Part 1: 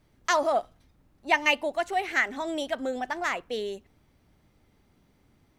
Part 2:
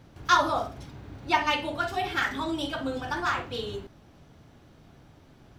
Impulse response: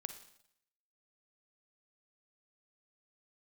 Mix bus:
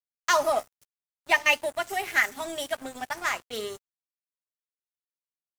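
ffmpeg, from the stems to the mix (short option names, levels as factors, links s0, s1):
-filter_complex "[0:a]equalizer=f=170:w=0.35:g=-7,bandreject=f=50:t=h:w=6,bandreject=f=100:t=h:w=6,bandreject=f=150:t=h:w=6,bandreject=f=200:t=h:w=6,aecho=1:1:4.9:0.52,volume=1.26[s0];[1:a]aexciter=amount=13.1:drive=7.8:freq=5700,asoftclip=type=tanh:threshold=0.0891,adelay=6.9,volume=0.299[s1];[s0][s1]amix=inputs=2:normalize=0,highpass=82,aeval=exprs='sgn(val(0))*max(abs(val(0))-0.0112,0)':c=same"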